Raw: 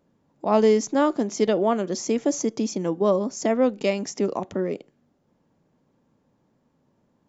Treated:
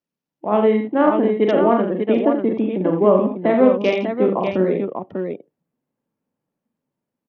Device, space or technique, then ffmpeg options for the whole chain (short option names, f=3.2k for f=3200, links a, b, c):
Bluetooth headset: -af "lowpass=5.7k,afftdn=nr=25:nf=-44,highpass=110,aecho=1:1:43|55|78|84|595:0.531|0.133|0.158|0.422|0.447,dynaudnorm=f=100:g=17:m=9dB,aresample=8000,aresample=44100" -ar 48000 -c:a sbc -b:a 64k